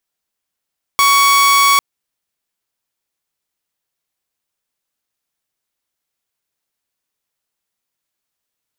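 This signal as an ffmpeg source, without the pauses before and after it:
-f lavfi -i "aevalsrc='0.501*(2*mod(1120*t,1)-1)':d=0.8:s=44100"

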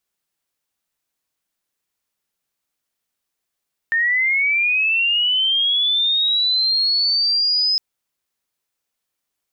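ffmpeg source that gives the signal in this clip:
-f lavfi -i "aevalsrc='0.178*sin(2*PI*(1800*t+3300*t*t/(2*3.86)))':d=3.86:s=44100"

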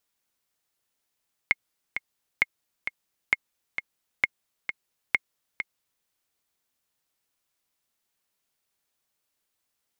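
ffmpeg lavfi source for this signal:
-f lavfi -i "aevalsrc='pow(10,(-6.5-9*gte(mod(t,2*60/132),60/132))/20)*sin(2*PI*2150*mod(t,60/132))*exp(-6.91*mod(t,60/132)/0.03)':d=4.54:s=44100"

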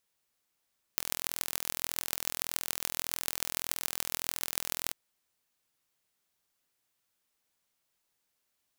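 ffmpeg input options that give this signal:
-f lavfi -i "aevalsrc='0.841*eq(mod(n,1058),0)*(0.5+0.5*eq(mod(n,6348),0))':d=3.95:s=44100"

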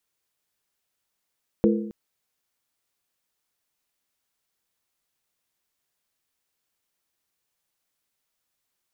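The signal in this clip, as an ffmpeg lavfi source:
-f lavfi -i "aevalsrc='0.158*pow(10,-3*t/0.8)*sin(2*PI*213*t)+0.126*pow(10,-3*t/0.634)*sin(2*PI*339.5*t)+0.1*pow(10,-3*t/0.547)*sin(2*PI*455*t)+0.0794*pow(10,-3*t/0.528)*sin(2*PI*489*t)':d=0.27:s=44100"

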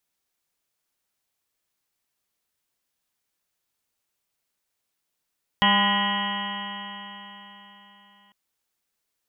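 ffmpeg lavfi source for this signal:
-f lavfi -i "aevalsrc='0.0708*pow(10,-3*t/3.95)*sin(2*PI*199.17*t)+0.00794*pow(10,-3*t/3.95)*sin(2*PI*399.35*t)+0.02*pow(10,-3*t/3.95)*sin(2*PI*601.55*t)+0.0631*pow(10,-3*t/3.95)*sin(2*PI*806.75*t)+0.0891*pow(10,-3*t/3.95)*sin(2*PI*1015.92*t)+0.0168*pow(10,-3*t/3.95)*sin(2*PI*1229.99*t)+0.0224*pow(10,-3*t/3.95)*sin(2*PI*1449.86*t)+0.0141*pow(10,-3*t/3.95)*sin(2*PI*1676.37*t)+0.0794*pow(10,-3*t/3.95)*sin(2*PI*1910.33*t)+0.0158*pow(10,-3*t/3.95)*sin(2*PI*2152.51*t)+0.0112*pow(10,-3*t/3.95)*sin(2*PI*2403.62*t)+0.0178*pow(10,-3*t/3.95)*sin(2*PI*2664.31*t)+0.075*pow(10,-3*t/3.95)*sin(2*PI*2935.19*t)+0.0596*pow(10,-3*t/3.95)*sin(2*PI*3216.83*t)':d=2.7:s=44100"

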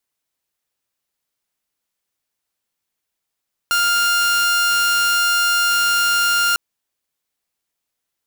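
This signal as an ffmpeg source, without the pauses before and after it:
-f lavfi -i "aevalsrc='0.251*(2*mod(1400*t,1)-1)':d=2.85:s=44100"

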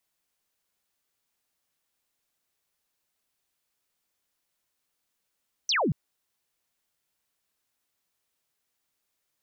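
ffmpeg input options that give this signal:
-f lavfi -i "aevalsrc='0.0794*clip(t/0.002,0,1)*clip((0.23-t)/0.002,0,1)*sin(2*PI*6200*0.23/log(120/6200)*(exp(log(120/6200)*t/0.23)-1))':d=0.23:s=44100"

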